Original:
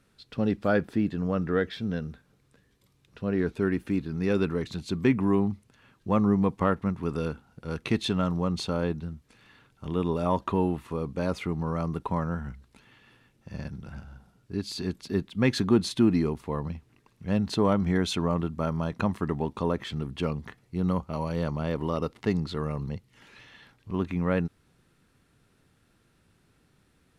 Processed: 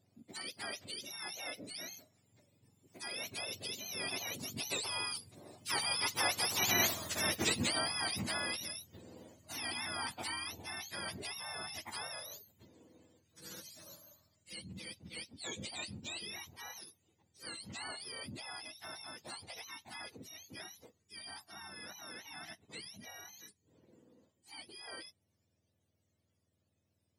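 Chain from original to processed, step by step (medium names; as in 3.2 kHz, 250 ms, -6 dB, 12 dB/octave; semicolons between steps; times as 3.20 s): spectrum inverted on a logarithmic axis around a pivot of 960 Hz; Doppler pass-by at 6.94 s, 22 m/s, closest 2.8 m; spectrum-flattening compressor 2:1; trim +7.5 dB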